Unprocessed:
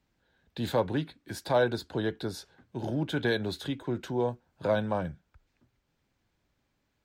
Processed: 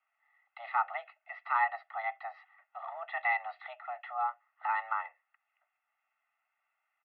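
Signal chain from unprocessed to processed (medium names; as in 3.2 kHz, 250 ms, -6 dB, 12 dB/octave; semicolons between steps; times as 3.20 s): mistuned SSB +350 Hz 490–2300 Hz; comb 1.5 ms, depth 89%; trim -2 dB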